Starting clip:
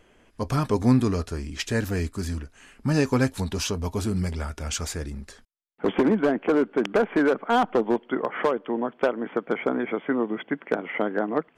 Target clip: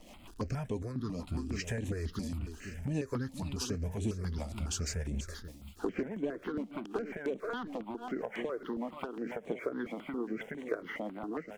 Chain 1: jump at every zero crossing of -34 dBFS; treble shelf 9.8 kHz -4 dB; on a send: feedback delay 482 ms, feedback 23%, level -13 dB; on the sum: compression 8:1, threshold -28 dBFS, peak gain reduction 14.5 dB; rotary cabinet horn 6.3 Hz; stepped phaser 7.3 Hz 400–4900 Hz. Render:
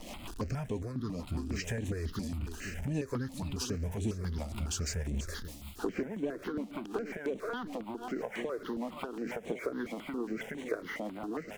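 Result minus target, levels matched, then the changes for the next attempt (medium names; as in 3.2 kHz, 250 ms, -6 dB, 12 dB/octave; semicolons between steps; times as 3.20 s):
jump at every zero crossing: distortion +10 dB
change: jump at every zero crossing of -45 dBFS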